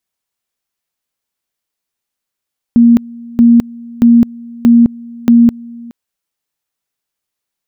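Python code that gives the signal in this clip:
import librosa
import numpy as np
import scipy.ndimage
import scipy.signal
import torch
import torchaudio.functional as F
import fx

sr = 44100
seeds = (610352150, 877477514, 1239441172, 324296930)

y = fx.two_level_tone(sr, hz=235.0, level_db=-2.5, drop_db=24.0, high_s=0.21, low_s=0.42, rounds=5)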